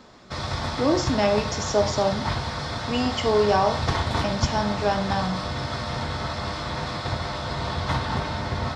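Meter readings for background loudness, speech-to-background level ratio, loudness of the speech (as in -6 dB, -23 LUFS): -28.5 LUFS, 3.5 dB, -25.0 LUFS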